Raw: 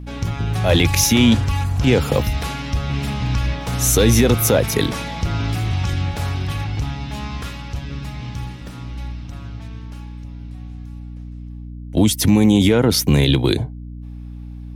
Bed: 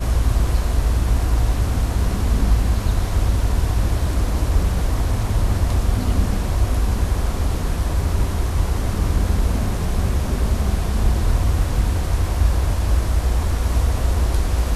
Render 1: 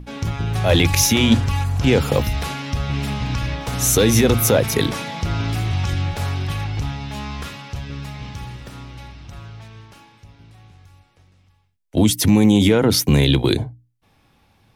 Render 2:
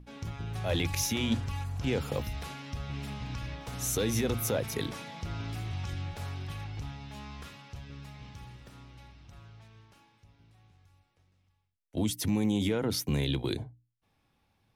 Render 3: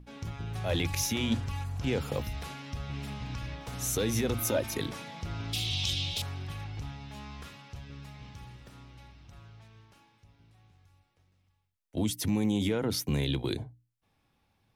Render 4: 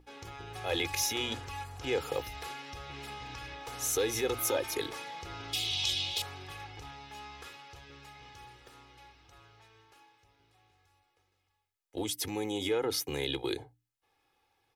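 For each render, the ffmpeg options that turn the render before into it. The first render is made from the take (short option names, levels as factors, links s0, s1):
-af "bandreject=f=60:t=h:w=6,bandreject=f=120:t=h:w=6,bandreject=f=180:t=h:w=6,bandreject=f=240:t=h:w=6,bandreject=f=300:t=h:w=6"
-af "volume=0.188"
-filter_complex "[0:a]asettb=1/sr,asplit=3[s0][s1][s2];[s0]atrim=end=4.384[s3];[s1]atrim=start=4.38:end=4.78,asetpts=PTS-STARTPTS,afade=t=in:d=0.004:c=qsin,afade=t=out:st=0.396:d=0.004:c=qsin,aecho=1:1:3.3:0.65,atrim=end_sample=17640[s4];[s2]atrim=start=4.776[s5];[s3][s4]acrossfade=d=0.004:c1=hsin:c2=qsin[s6];[s6][s5]acrossfade=d=0.004:c1=qsin:c2=hsin,asettb=1/sr,asplit=3[s7][s8][s9];[s7]atrim=end=5.534[s10];[s8]atrim=start=5.53:end=6.22,asetpts=PTS-STARTPTS,afade=t=in:d=0.004:c=qsin,afade=t=out:st=0.686:d=0.004:c=qsin,highshelf=f=2300:t=q:w=3:g=13.5[s11];[s9]atrim=start=6.216[s12];[s10][s11]acrossfade=d=0.004:c1=hsin:c2=qsin[s13];[s13][s12]acrossfade=d=0.004:c1=qsin:c2=hsin"
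-af "bass=f=250:g=-14,treble=f=4000:g=-1,aecho=1:1:2.4:0.62"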